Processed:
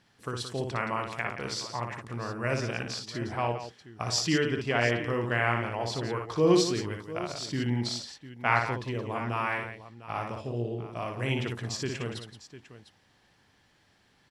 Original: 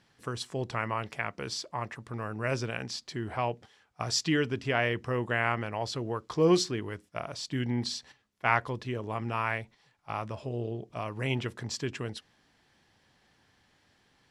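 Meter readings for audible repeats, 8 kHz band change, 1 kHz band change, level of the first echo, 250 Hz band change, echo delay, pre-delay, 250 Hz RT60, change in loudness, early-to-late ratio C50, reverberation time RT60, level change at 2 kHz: 3, +1.5 dB, +1.5 dB, -5.0 dB, +1.5 dB, 59 ms, none, none, +1.5 dB, none, none, +1.5 dB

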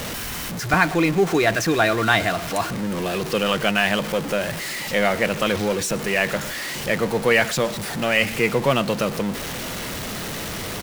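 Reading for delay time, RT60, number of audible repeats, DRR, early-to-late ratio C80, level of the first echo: 0.121 s, none, 1, none, none, -20.0 dB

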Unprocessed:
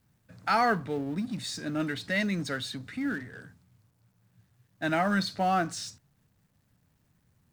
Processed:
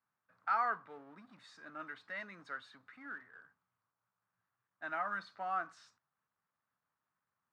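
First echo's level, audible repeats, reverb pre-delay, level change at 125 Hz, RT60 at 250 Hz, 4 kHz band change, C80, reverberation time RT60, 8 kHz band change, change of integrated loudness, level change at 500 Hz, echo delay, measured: none, none, none, -29.0 dB, none, -22.0 dB, none, none, under -25 dB, -10.0 dB, -16.5 dB, none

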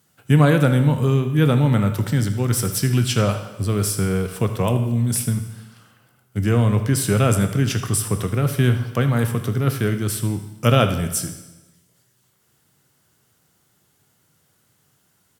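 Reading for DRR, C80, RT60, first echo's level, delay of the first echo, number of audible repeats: 7.0 dB, 11.5 dB, 1.1 s, -15.0 dB, 79 ms, 1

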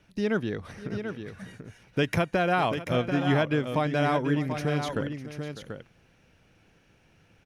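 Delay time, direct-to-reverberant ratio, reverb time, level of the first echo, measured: 0.601 s, none, none, -15.0 dB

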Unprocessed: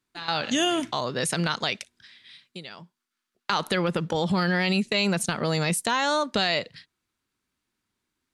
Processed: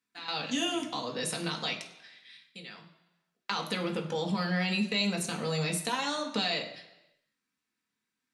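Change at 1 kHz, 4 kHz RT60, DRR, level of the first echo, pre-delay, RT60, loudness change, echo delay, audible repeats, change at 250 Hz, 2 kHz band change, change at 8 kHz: -8.0 dB, 0.95 s, 1.0 dB, none, 3 ms, 1.0 s, -6.0 dB, none, none, -5.5 dB, -7.0 dB, -6.0 dB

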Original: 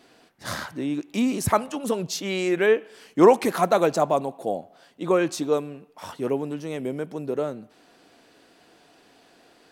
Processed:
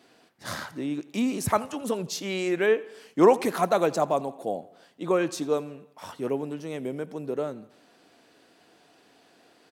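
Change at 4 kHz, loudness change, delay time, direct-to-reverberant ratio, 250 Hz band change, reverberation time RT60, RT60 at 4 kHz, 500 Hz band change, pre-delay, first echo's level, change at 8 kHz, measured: -3.0 dB, -3.0 dB, 84 ms, none, -3.0 dB, none, none, -3.0 dB, none, -21.5 dB, -3.0 dB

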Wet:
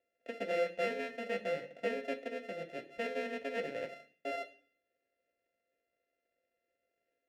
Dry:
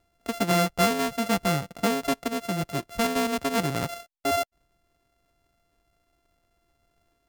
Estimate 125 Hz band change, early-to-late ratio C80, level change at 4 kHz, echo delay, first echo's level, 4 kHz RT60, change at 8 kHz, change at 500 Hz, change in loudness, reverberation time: -26.0 dB, 17.5 dB, -17.0 dB, none, none, 0.55 s, under -25 dB, -7.5 dB, -12.0 dB, 0.50 s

